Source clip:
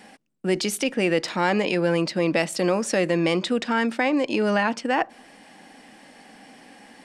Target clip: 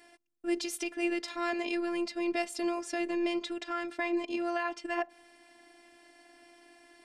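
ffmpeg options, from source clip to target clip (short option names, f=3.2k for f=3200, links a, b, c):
-filter_complex "[0:a]asettb=1/sr,asplit=3[a][b][c];[a]atrim=end=2.794[d];[b]atrim=start=2.79:end=4.81,asetpts=PTS-STARTPTS,afade=t=in:d=0.004:c=qsin,afade=t=out:st=2.016:d=0.004:c=qsin,highshelf=f=6.8k:g=-5.5[e];[c]atrim=start=4.806[f];[d][e]acrossfade=d=0.004:c1=hsin:c2=qsin[g];[g][f]acrossfade=d=0.004:c1=qsin:c2=hsin,afftfilt=real='hypot(re,im)*cos(PI*b)':imag='0':win_size=512:overlap=0.75,volume=-6dB"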